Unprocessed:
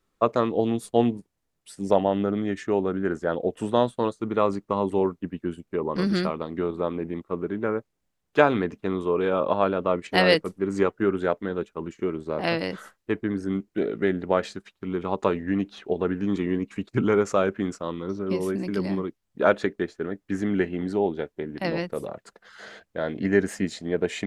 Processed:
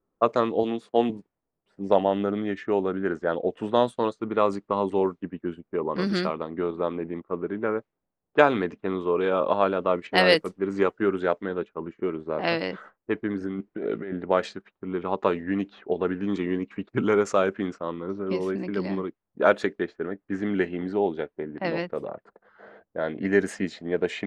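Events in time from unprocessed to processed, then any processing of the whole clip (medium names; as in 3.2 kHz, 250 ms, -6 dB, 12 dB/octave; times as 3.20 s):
0.63–1.10 s: Bessel high-pass 210 Hz
13.41–14.13 s: compressor with a negative ratio -29 dBFS
whole clip: level-controlled noise filter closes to 770 Hz, open at -17.5 dBFS; bass shelf 150 Hz -10 dB; trim +1 dB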